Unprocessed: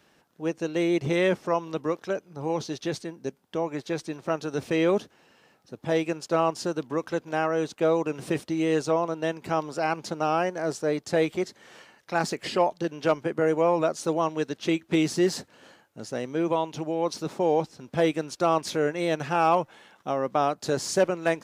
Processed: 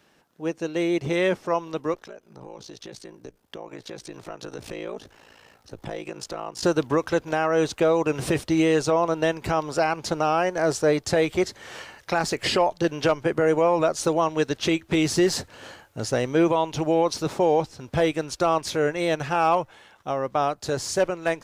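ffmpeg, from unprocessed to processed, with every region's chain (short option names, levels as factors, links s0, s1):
-filter_complex "[0:a]asettb=1/sr,asplit=3[s0][s1][s2];[s0]atrim=end=1.944[s3];[s1]atrim=start=1.94:end=6.63,asetpts=PTS-STARTPTS,afade=t=in:d=0.004:c=qsin,afade=t=out:st=4.686:d=0.004:c=qsin,acompressor=threshold=0.0112:ratio=4:attack=3.2:release=140:knee=1:detection=peak,afreqshift=18,aeval=exprs='val(0)*sin(2*PI*28*n/s)':c=same[s4];[s2]atrim=start=6.626[s5];[s3][s4]acrossfade=d=0.004:c1=hsin:c2=qsin[s6];[s6][s5]acrossfade=d=0.004:c1=qsin:c2=hsin,asubboost=boost=8:cutoff=67,dynaudnorm=f=370:g=21:m=3.76,alimiter=limit=0.251:level=0:latency=1:release=372,volume=1.12"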